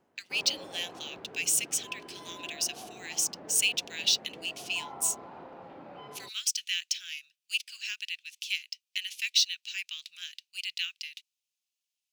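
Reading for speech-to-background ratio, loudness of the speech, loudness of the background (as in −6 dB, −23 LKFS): 17.0 dB, −30.5 LKFS, −47.5 LKFS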